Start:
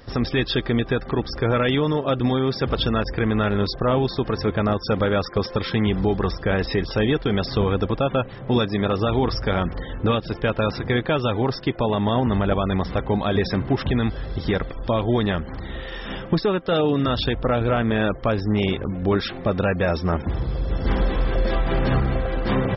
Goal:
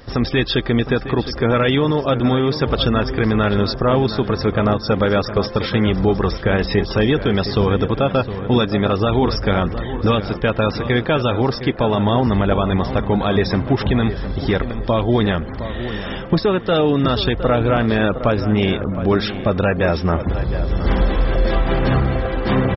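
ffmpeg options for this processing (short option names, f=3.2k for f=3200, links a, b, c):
-filter_complex "[0:a]asplit=2[a][b];[b]adelay=713,lowpass=f=2.4k:p=1,volume=-11dB,asplit=2[c][d];[d]adelay=713,lowpass=f=2.4k:p=1,volume=0.39,asplit=2[e][f];[f]adelay=713,lowpass=f=2.4k:p=1,volume=0.39,asplit=2[g][h];[h]adelay=713,lowpass=f=2.4k:p=1,volume=0.39[i];[a][c][e][g][i]amix=inputs=5:normalize=0,volume=4dB"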